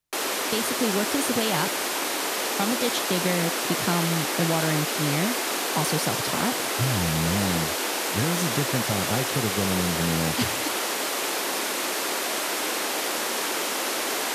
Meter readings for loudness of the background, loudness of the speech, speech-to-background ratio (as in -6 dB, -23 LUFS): -25.5 LUFS, -28.5 LUFS, -3.0 dB